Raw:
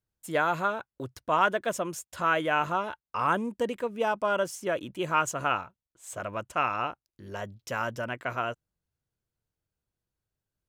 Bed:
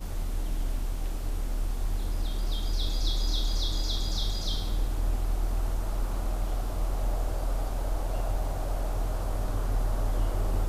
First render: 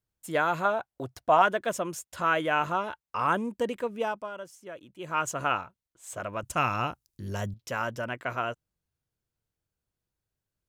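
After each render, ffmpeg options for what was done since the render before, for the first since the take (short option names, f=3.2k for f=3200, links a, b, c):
-filter_complex "[0:a]asettb=1/sr,asplit=3[a][b][c];[a]atrim=end=0.654[d];[b]atrim=start=0.65:end=1.42,asetpts=PTS-STARTPTS,afade=t=in:d=0.004:c=qsin,afade=t=out:st=0.766:d=0.004:c=qsin,equalizer=f=720:w=3.5:g=11.5[e];[c]atrim=start=1.416[f];[d][e]acrossfade=d=0.004:c1=hsin:c2=qsin[g];[g][f]acrossfade=d=0.004:c1=qsin:c2=hsin,asettb=1/sr,asplit=3[h][i][j];[h]atrim=end=6.434[k];[i]atrim=start=6.43:end=7.54,asetpts=PTS-STARTPTS,afade=t=in:d=0.004:c=qsin,afade=t=out:st=1.106:d=0.004:c=qsin,bass=f=250:g=11,treble=f=4k:g=11[l];[j]atrim=start=7.536[m];[k][l]acrossfade=d=0.004:c1=hsin:c2=qsin[n];[n][m]acrossfade=d=0.004:c1=qsin:c2=hsin,asplit=3[o][p][q];[o]atrim=end=4.31,asetpts=PTS-STARTPTS,afade=t=out:st=3.93:d=0.38:silence=0.223872[r];[p]atrim=start=4.31:end=4.95,asetpts=PTS-STARTPTS,volume=-13dB[s];[q]atrim=start=4.95,asetpts=PTS-STARTPTS,afade=t=in:d=0.38:silence=0.223872[t];[r][s][t]concat=n=3:v=0:a=1"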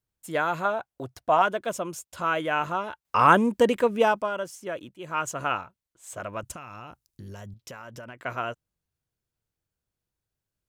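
-filter_complex "[0:a]asettb=1/sr,asplit=3[a][b][c];[a]atrim=end=1.434[d];[b]atrim=start=1.43:end=2.37,asetpts=PTS-STARTPTS,afade=t=in:d=0.004:c=qsin,afade=t=out:st=0.936:d=0.004:c=qsin,equalizer=f=1.8k:t=o:w=0.29:g=-6[e];[c]atrim=start=2.366[f];[d][e]acrossfade=d=0.004:c1=hsin:c2=qsin[g];[g][f]acrossfade=d=0.004:c1=qsin:c2=hsin,asettb=1/sr,asplit=3[h][i][j];[h]atrim=end=6.554[k];[i]atrim=start=6.55:end=8.24,asetpts=PTS-STARTPTS,afade=t=in:d=0.004:c=qsin,afade=t=out:st=1.686:d=0.004:c=qsin,acompressor=threshold=-37dB:ratio=10:attack=3.2:release=140:knee=1:detection=peak[l];[j]atrim=start=8.236[m];[k][l]acrossfade=d=0.004:c1=hsin:c2=qsin[n];[n][m]acrossfade=d=0.004:c1=qsin:c2=hsin,asplit=3[o][p][q];[o]atrim=end=3.052[r];[p]atrim=start=3.048:end=4.892,asetpts=PTS-STARTPTS,volume=9dB[s];[q]atrim=start=4.888[t];[r][s]acrossfade=d=0.004:c1=hsin:c2=hsin[u];[u][t]acrossfade=d=0.004:c1=hsin:c2=hsin"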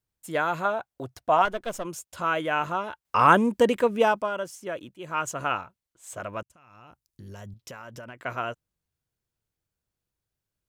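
-filter_complex "[0:a]asettb=1/sr,asplit=3[a][b][c];[a]atrim=end=1.454[d];[b]atrim=start=1.45:end=1.85,asetpts=PTS-STARTPTS,afade=t=in:d=0.004:c=qsin,afade=t=out:st=0.396:d=0.004:c=qsin,aeval=exprs='if(lt(val(0),0),0.447*val(0),val(0))':c=same[e];[c]atrim=start=1.846[f];[d][e]acrossfade=d=0.004:c1=hsin:c2=qsin[g];[g][f]acrossfade=d=0.004:c1=qsin:c2=hsin,asplit=2[h][i];[h]atrim=end=6.43,asetpts=PTS-STARTPTS,afade=t=out:st=6.426:d=0.004:c=hsin[j];[i]atrim=start=6.43,asetpts=PTS-STARTPTS,afade=t=in:d=1.03[k];[j][k]concat=n=2:v=0:a=1"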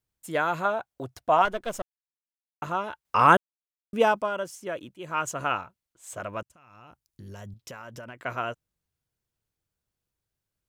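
-filter_complex "[0:a]asplit=5[a][b][c][d][e];[a]atrim=end=1.82,asetpts=PTS-STARTPTS,afade=t=out:st=1.816:d=0.004:c=hsin[f];[b]atrim=start=1.82:end=2.62,asetpts=PTS-STARTPTS,volume=0[g];[c]atrim=start=2.62:end=3.37,asetpts=PTS-STARTPTS,afade=t=in:d=0.004:c=hsin,afade=t=out:st=0.746:d=0.004:c=hsin[h];[d]atrim=start=3.37:end=3.93,asetpts=PTS-STARTPTS,volume=0[i];[e]atrim=start=3.93,asetpts=PTS-STARTPTS,afade=t=in:d=0.004:c=hsin[j];[f][g][h][i][j]concat=n=5:v=0:a=1"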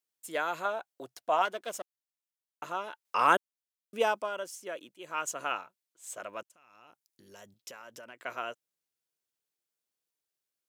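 -af "highpass=430,equalizer=f=1k:t=o:w=2.6:g=-6.5"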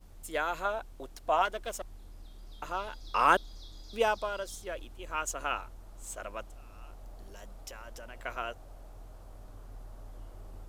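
-filter_complex "[1:a]volume=-19.5dB[a];[0:a][a]amix=inputs=2:normalize=0"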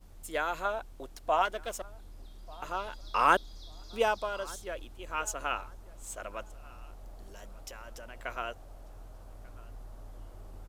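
-filter_complex "[0:a]asplit=2[a][b];[b]adelay=1191,lowpass=f=2.5k:p=1,volume=-22dB,asplit=2[c][d];[d]adelay=1191,lowpass=f=2.5k:p=1,volume=0.28[e];[a][c][e]amix=inputs=3:normalize=0"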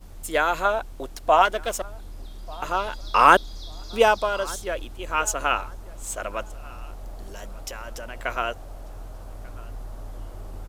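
-af "volume=10dB,alimiter=limit=-1dB:level=0:latency=1"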